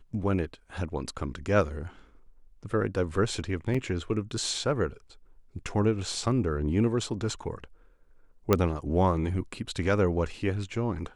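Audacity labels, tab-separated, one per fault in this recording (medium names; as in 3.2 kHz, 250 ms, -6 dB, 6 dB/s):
3.740000	3.750000	dropout 5 ms
8.530000	8.530000	pop -8 dBFS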